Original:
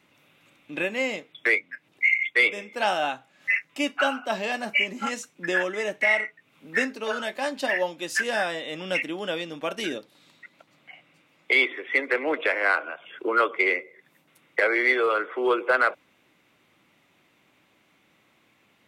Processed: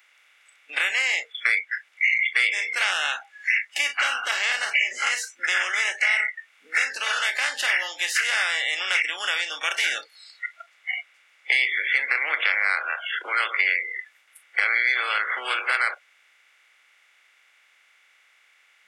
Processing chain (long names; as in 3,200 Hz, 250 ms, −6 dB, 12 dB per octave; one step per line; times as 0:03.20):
compressor on every frequency bin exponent 0.4
Bessel high-pass filter 2,300 Hz, order 2
downward compressor 2 to 1, threshold −24 dBFS, peak gain reduction 5.5 dB
noise reduction from a noise print of the clip's start 27 dB
level +3.5 dB